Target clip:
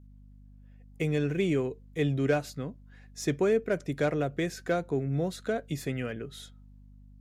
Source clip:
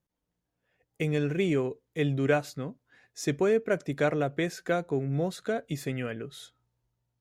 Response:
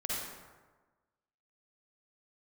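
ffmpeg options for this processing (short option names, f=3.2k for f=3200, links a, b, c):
-filter_complex "[0:a]adynamicequalizer=threshold=0.01:dfrequency=920:dqfactor=0.75:tfrequency=920:tqfactor=0.75:attack=5:release=100:ratio=0.375:range=2:mode=cutabove:tftype=bell,acrossover=split=760[a][b];[b]asoftclip=type=tanh:threshold=-26.5dB[c];[a][c]amix=inputs=2:normalize=0,aeval=exprs='val(0)+0.00282*(sin(2*PI*50*n/s)+sin(2*PI*2*50*n/s)/2+sin(2*PI*3*50*n/s)/3+sin(2*PI*4*50*n/s)/4+sin(2*PI*5*50*n/s)/5)':c=same"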